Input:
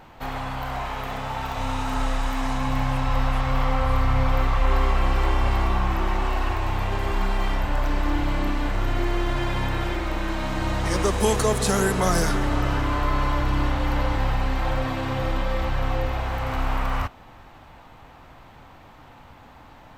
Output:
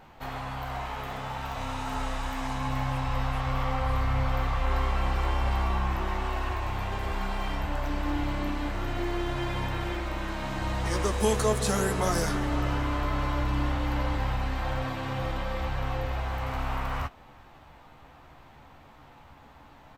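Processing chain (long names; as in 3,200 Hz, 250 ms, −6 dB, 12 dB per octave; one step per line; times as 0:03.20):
double-tracking delay 14 ms −8 dB
level −5.5 dB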